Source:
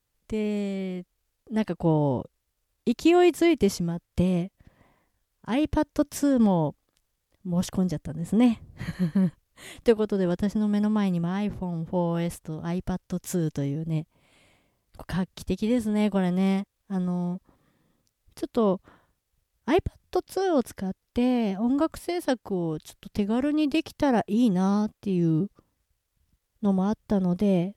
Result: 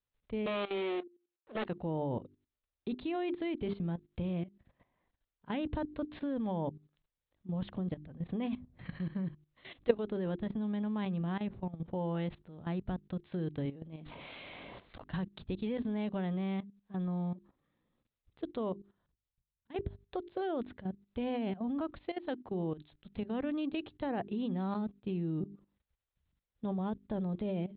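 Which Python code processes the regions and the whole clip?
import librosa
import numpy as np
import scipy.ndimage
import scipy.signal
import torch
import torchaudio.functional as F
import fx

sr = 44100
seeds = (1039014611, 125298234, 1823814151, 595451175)

y = fx.chain(x, sr, fx.lower_of_two(delay_ms=8.8),
    fx.highpass(hz=330.0, slope=24),
    fx.leveller(passes=3), at=(0.46, 1.66))
y = fx.chain(y, sr, fx.low_shelf(hz=150.0, db=-11.5),
    fx.env_flatten(amount_pct=70), at=(13.65, 15.03))
y = fx.chain(y, sr, fx.level_steps(step_db=23),
    fx.auto_swell(attack_ms=209.0),
    fx.bass_treble(bass_db=7, treble_db=12), at=(18.72, 19.76))
y = scipy.signal.sosfilt(scipy.signal.butter(16, 4000.0, 'lowpass', fs=sr, output='sos'), y)
y = fx.hum_notches(y, sr, base_hz=50, count=8)
y = fx.level_steps(y, sr, step_db=15)
y = F.gain(torch.from_numpy(y), -4.0).numpy()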